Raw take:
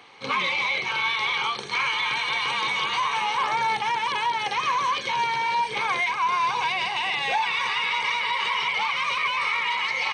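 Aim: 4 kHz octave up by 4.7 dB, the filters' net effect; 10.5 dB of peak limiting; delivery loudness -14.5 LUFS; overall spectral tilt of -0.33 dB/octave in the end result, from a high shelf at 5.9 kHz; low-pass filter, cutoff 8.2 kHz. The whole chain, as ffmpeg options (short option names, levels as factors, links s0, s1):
-af "lowpass=8200,equalizer=f=4000:t=o:g=5.5,highshelf=f=5900:g=3.5,volume=4.73,alimiter=limit=0.398:level=0:latency=1"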